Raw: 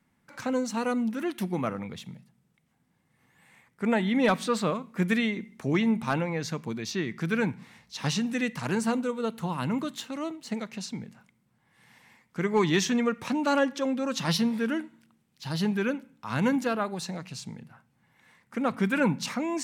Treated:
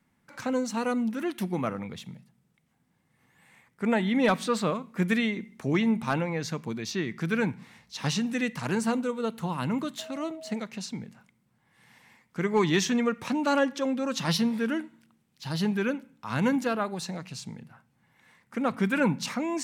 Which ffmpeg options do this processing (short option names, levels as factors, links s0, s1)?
-filter_complex "[0:a]asettb=1/sr,asplit=3[s0][s1][s2];[s0]atrim=end=9.994[s3];[s1]atrim=start=9.99:end=10.56,asetpts=PTS-STARTPTS,afade=t=in:d=0.004:c=qsin,afade=t=out:st=0.566:d=0.004:c=qsin,aeval=exprs='val(0)+0.00891*sin(2*PI*640*n/s)':c=same[s4];[s2]atrim=start=10.556[s5];[s3][s4]acrossfade=d=0.004:c1=hsin:c2=qsin[s6];[s6][s5]acrossfade=d=0.004:c1=qsin:c2=hsin"